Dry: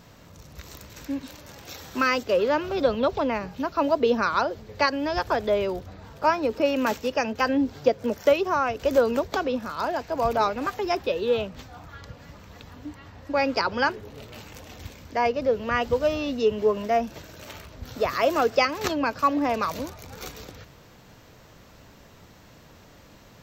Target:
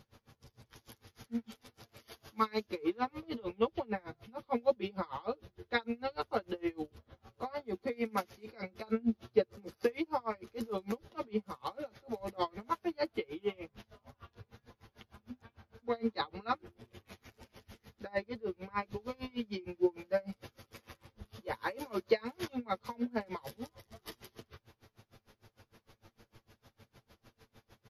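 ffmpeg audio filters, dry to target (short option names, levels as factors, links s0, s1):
-af "aecho=1:1:7.5:0.81,asetrate=37044,aresample=44100,aeval=exprs='val(0)*pow(10,-29*(0.5-0.5*cos(2*PI*6.6*n/s))/20)':c=same,volume=0.376"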